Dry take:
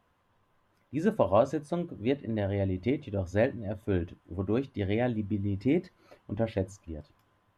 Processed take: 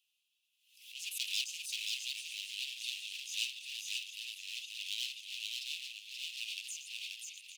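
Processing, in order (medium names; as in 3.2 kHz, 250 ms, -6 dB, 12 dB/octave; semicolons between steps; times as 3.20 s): backward echo that repeats 399 ms, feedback 74%, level -9 dB; waveshaping leveller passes 1; in parallel at -0.5 dB: peak limiter -22 dBFS, peak gain reduction 10.5 dB; on the sum: wavefolder -22.5 dBFS; Chebyshev high-pass 2.6 kHz, order 6; on a send: delay 531 ms -3 dB; on the sum: swell ahead of each attack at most 91 dB/s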